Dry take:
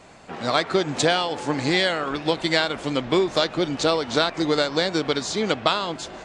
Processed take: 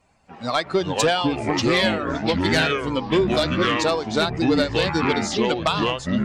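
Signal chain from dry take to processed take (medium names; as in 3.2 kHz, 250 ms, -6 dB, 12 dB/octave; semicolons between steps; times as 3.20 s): expander on every frequency bin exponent 1.5; ever faster or slower copies 253 ms, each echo -5 st, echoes 3; sine folder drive 6 dB, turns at -4.5 dBFS; trim -7 dB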